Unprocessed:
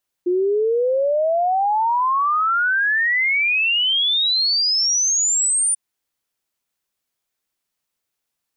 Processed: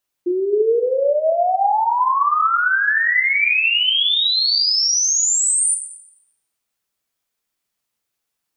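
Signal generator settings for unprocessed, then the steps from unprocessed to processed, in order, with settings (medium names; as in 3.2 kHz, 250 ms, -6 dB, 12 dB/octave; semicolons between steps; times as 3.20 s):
log sweep 350 Hz -> 9.4 kHz 5.49 s -15.5 dBFS
plate-style reverb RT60 0.97 s, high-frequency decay 0.8×, DRR 4 dB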